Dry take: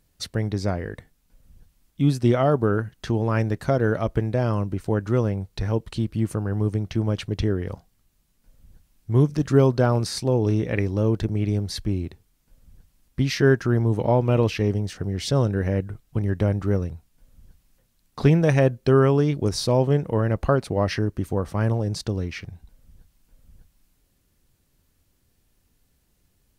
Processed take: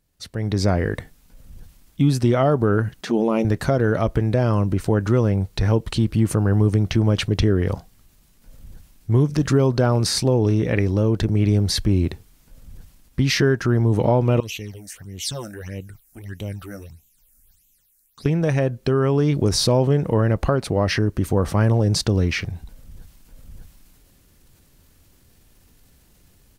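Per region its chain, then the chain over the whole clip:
3.01–3.45 s: touch-sensitive flanger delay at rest 7.2 ms, full sweep at -18.5 dBFS + brick-wall FIR high-pass 150 Hz
14.40–18.26 s: phase shifter stages 8, 1.6 Hz, lowest notch 120–1600 Hz + pre-emphasis filter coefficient 0.9
whole clip: compression, threshold -21 dBFS; transient shaper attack -2 dB, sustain +3 dB; level rider gain up to 16 dB; trim -5 dB

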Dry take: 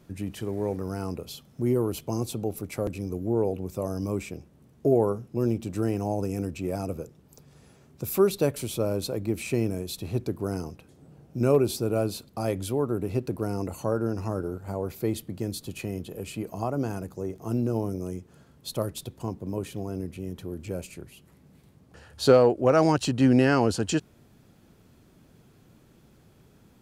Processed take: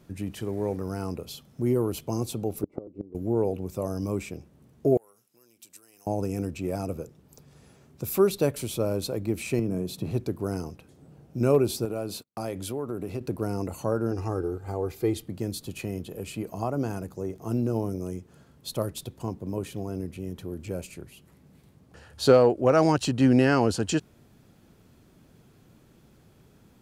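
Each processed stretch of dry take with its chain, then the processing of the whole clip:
2.63–3.15 s: Savitzky-Golay filter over 65 samples + peaking EQ 350 Hz +14.5 dB 1.5 oct + inverted gate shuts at -14 dBFS, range -25 dB
4.97–6.07 s: compression 10:1, threshold -30 dBFS + differentiator
9.59–10.11 s: tilt shelf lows +4.5 dB, about 1.3 kHz + compression 4:1, threshold -25 dBFS + resonant high-pass 140 Hz, resonance Q 1.6
11.85–13.21 s: high-pass 130 Hz 6 dB/octave + gate -47 dBFS, range -37 dB + compression 3:1, threshold -28 dBFS
14.11–15.26 s: treble shelf 12 kHz -9.5 dB + comb 2.5 ms, depth 54%
whole clip: none

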